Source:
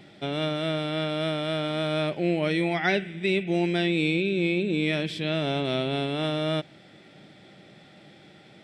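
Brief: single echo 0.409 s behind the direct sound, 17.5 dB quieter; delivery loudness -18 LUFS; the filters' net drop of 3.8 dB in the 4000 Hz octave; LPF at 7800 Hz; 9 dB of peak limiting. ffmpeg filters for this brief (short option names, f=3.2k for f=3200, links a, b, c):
-af "lowpass=7.8k,equalizer=f=4k:t=o:g=-4.5,alimiter=limit=-20.5dB:level=0:latency=1,aecho=1:1:409:0.133,volume=12dB"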